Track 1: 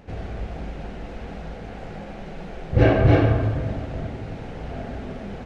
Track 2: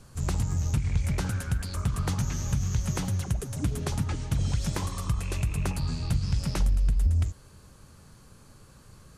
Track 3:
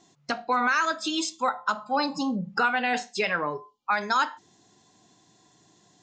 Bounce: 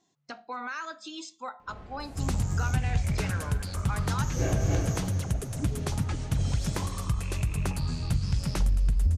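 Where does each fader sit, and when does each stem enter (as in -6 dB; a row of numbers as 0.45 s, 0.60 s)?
-14.0 dB, -0.5 dB, -12.5 dB; 1.60 s, 2.00 s, 0.00 s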